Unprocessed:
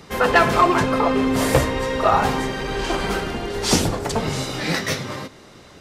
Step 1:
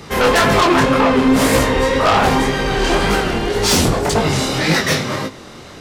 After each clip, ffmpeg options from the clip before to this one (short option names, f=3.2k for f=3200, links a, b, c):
-af "aeval=exprs='0.501*(cos(1*acos(clip(val(0)/0.501,-1,1)))-cos(1*PI/2))+0.224*(cos(5*acos(clip(val(0)/0.501,-1,1)))-cos(5*PI/2))':c=same,flanger=delay=19:depth=7.6:speed=1.9,volume=1.5dB"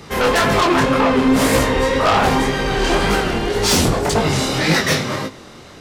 -af "dynaudnorm=f=130:g=11:m=3dB,volume=-2.5dB"